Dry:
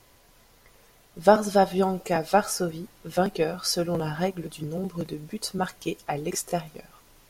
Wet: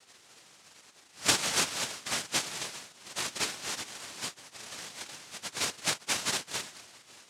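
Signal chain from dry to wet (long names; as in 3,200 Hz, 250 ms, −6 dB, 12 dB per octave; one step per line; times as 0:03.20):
0:03.68–0:04.59: high-pass filter 730 Hz 12 dB per octave
gate on every frequency bin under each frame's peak −20 dB weak
high-shelf EQ 5,200 Hz +9 dB
0:05.56–0:06.37: leveller curve on the samples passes 2
cochlear-implant simulation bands 1
level +6 dB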